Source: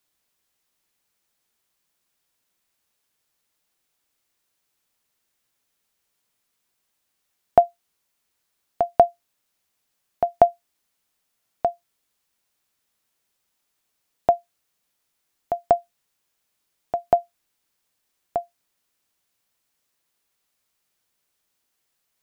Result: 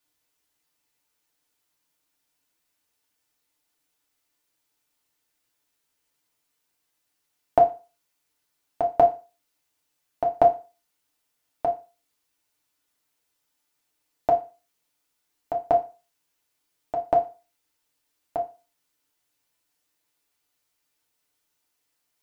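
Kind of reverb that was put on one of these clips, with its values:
feedback delay network reverb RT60 0.32 s, low-frequency decay 0.9×, high-frequency decay 0.95×, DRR −1 dB
level −4.5 dB

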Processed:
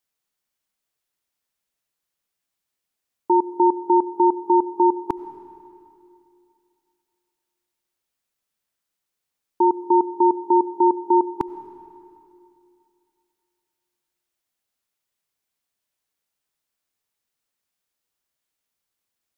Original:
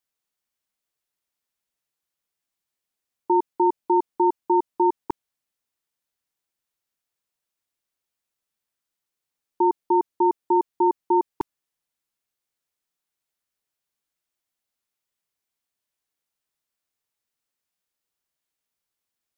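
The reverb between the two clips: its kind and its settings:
comb and all-pass reverb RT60 2.6 s, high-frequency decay 0.95×, pre-delay 50 ms, DRR 14.5 dB
level +2.5 dB

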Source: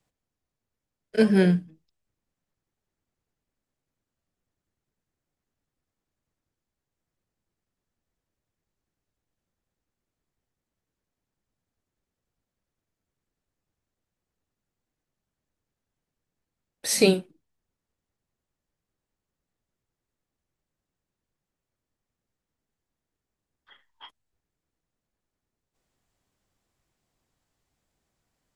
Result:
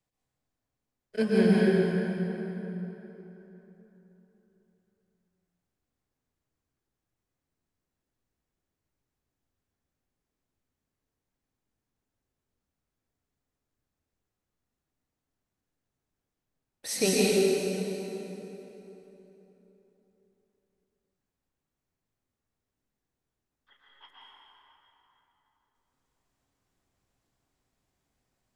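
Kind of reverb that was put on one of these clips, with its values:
dense smooth reverb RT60 3.7 s, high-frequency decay 0.65×, pre-delay 105 ms, DRR −6.5 dB
level −8 dB

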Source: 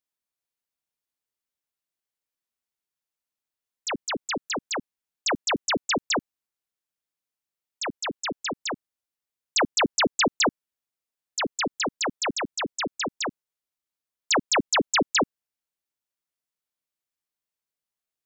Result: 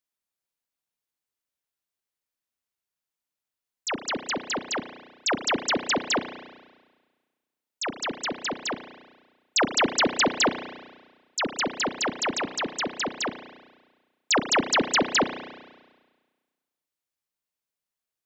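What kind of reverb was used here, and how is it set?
spring reverb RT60 1.4 s, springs 33 ms, chirp 25 ms, DRR 9.5 dB

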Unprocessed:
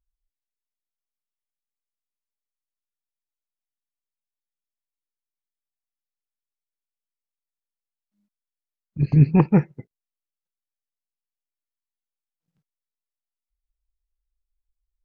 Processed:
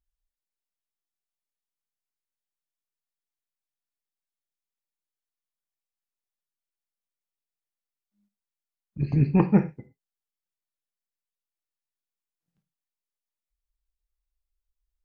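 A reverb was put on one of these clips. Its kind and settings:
reverb whose tail is shaped and stops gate 140 ms falling, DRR 8 dB
level −3.5 dB

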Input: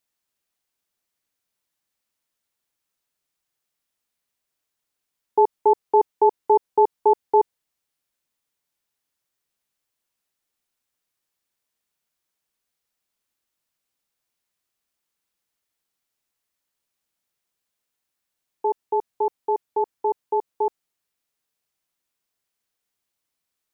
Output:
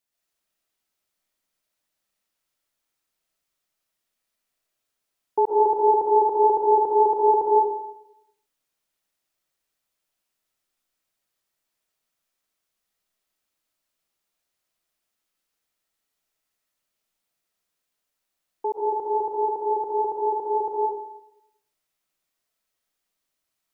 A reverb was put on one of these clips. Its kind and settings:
comb and all-pass reverb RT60 0.84 s, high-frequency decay 0.8×, pre-delay 90 ms, DRR −4.5 dB
level −4 dB

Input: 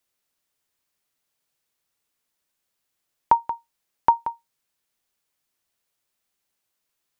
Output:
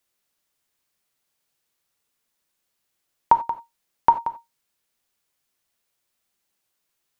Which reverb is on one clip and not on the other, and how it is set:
reverb whose tail is shaped and stops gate 110 ms flat, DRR 10 dB
level +1.5 dB

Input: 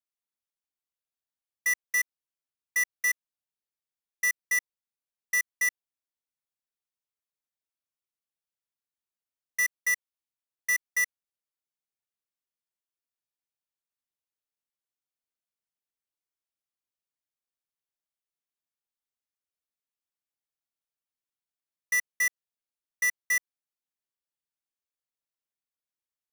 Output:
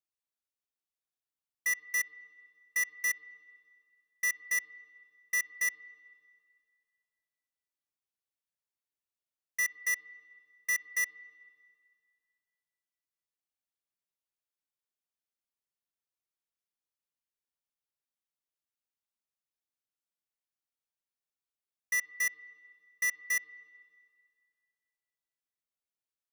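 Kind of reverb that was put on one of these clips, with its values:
spring reverb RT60 2 s, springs 51/59 ms, chirp 60 ms, DRR 16 dB
level −4 dB

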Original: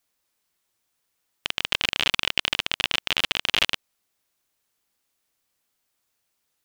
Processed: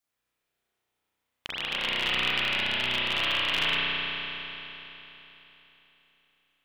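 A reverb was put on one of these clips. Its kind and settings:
spring reverb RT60 3.6 s, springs 32 ms, chirp 80 ms, DRR −10 dB
level −10.5 dB

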